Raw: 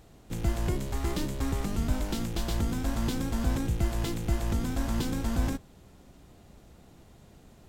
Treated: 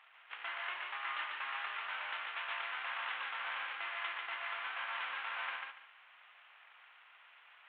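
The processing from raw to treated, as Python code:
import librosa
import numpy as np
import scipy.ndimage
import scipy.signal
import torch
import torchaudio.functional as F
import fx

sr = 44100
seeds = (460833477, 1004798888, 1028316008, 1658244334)

y = fx.cvsd(x, sr, bps=16000)
y = scipy.signal.sosfilt(scipy.signal.butter(4, 1100.0, 'highpass', fs=sr, output='sos'), y)
y = fx.echo_feedback(y, sr, ms=143, feedback_pct=23, wet_db=-3.5)
y = y * 10.0 ** (3.5 / 20.0)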